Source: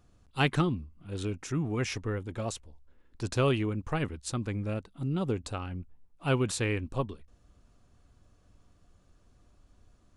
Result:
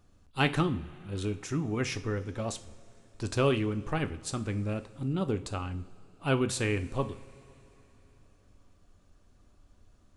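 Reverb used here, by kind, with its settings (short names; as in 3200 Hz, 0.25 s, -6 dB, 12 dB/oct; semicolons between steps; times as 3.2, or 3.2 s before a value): two-slope reverb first 0.42 s, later 3.6 s, from -18 dB, DRR 9 dB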